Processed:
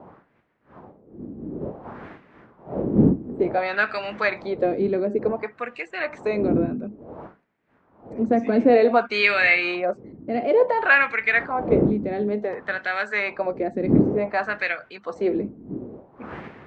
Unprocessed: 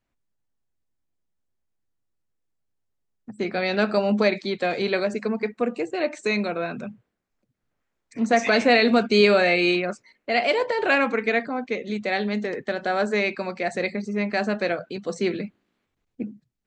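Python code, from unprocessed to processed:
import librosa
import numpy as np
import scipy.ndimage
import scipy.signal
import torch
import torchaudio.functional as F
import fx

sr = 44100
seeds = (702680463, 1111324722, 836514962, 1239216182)

y = fx.dmg_wind(x, sr, seeds[0], corner_hz=210.0, level_db=-28.0)
y = fx.wah_lfo(y, sr, hz=0.56, low_hz=270.0, high_hz=2100.0, q=2.0)
y = F.gain(torch.from_numpy(y), 8.0).numpy()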